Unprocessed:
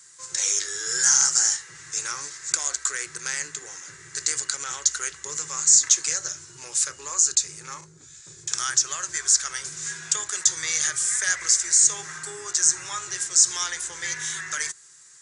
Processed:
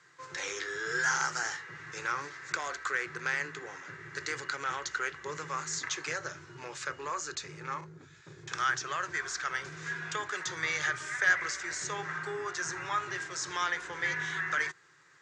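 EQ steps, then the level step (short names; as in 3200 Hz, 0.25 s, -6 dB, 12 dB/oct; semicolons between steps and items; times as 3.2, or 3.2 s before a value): HPF 110 Hz 12 dB/oct; LPF 2200 Hz 12 dB/oct; air absorption 57 m; +3.5 dB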